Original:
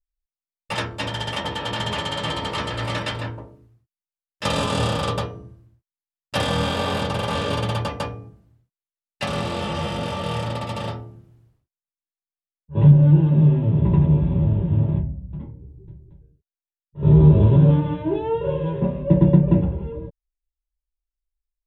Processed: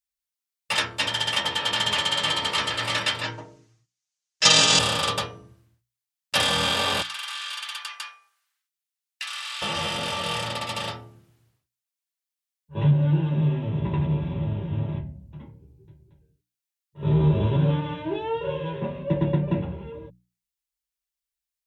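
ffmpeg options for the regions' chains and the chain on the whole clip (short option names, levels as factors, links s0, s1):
-filter_complex "[0:a]asettb=1/sr,asplit=3[s0][s1][s2];[s0]atrim=end=3.234[s3];[s1]atrim=start=3.23:end=4.79,asetpts=PTS-STARTPTS,afade=t=in:d=0.004:c=qsin,afade=t=out:st=1.556:d=0.004:c=qsin,lowpass=f=6400:t=q:w=2.9,aecho=1:1:6.4:0.96,atrim=end_sample=68796[s4];[s2]atrim=start=4.786[s5];[s3][s4]acrossfade=d=0.004:c1=hsin:c2=qsin[s6];[s6][s5]acrossfade=d=0.004:c1=qsin:c2=hsin,asettb=1/sr,asplit=3[s7][s8][s9];[s7]atrim=end=7.024[s10];[s8]atrim=start=7.02:end=9.62,asetpts=PTS-STARTPTS,afade=t=in:d=0.004:c=qsin,afade=t=out:st=2.596:d=0.004:c=qsin,highpass=f=1200:w=0.5412,highpass=f=1200:w=1.3066,acompressor=threshold=0.02:ratio=5:attack=3.2:release=140:knee=1:detection=peak[s11];[s9]atrim=start=9.616[s12];[s10][s11]acrossfade=d=0.004:c1=hsin:c2=qsin[s13];[s13][s12]acrossfade=d=0.004:c1=qsin:c2=hsin,highpass=74,tiltshelf=f=1100:g=-7.5,bandreject=f=60:t=h:w=6,bandreject=f=120:t=h:w=6,bandreject=f=180:t=h:w=6,bandreject=f=240:t=h:w=6,bandreject=f=300:t=h:w=6"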